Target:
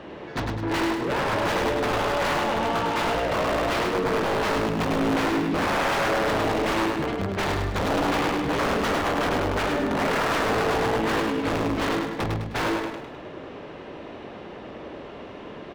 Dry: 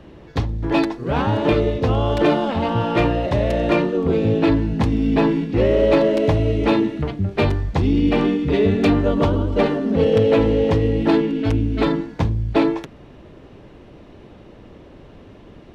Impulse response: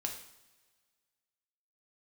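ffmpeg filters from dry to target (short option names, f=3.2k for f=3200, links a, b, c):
-filter_complex "[0:a]aeval=exprs='(mod(4.47*val(0)+1,2)-1)/4.47':c=same,asplit=2[a][b];[b]highpass=f=720:p=1,volume=24dB,asoftclip=type=tanh:threshold=-13dB[c];[a][c]amix=inputs=2:normalize=0,lowpass=f=2.2k:p=1,volume=-6dB,asplit=2[d][e];[e]aecho=0:1:103|206|309|412|515|618:0.631|0.278|0.122|0.0537|0.0236|0.0104[f];[d][f]amix=inputs=2:normalize=0,volume=-7.5dB"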